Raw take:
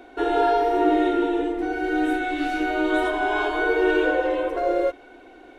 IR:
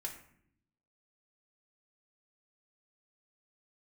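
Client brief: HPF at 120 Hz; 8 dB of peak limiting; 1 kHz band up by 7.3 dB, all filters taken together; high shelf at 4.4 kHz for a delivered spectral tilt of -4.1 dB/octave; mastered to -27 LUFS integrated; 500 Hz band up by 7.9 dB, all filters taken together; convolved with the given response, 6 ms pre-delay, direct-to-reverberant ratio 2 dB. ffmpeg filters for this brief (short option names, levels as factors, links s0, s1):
-filter_complex "[0:a]highpass=120,equalizer=f=500:t=o:g=8.5,equalizer=f=1000:t=o:g=6,highshelf=f=4400:g=6.5,alimiter=limit=0.335:level=0:latency=1,asplit=2[s0][s1];[1:a]atrim=start_sample=2205,adelay=6[s2];[s1][s2]afir=irnorm=-1:irlink=0,volume=0.891[s3];[s0][s3]amix=inputs=2:normalize=0,volume=0.266"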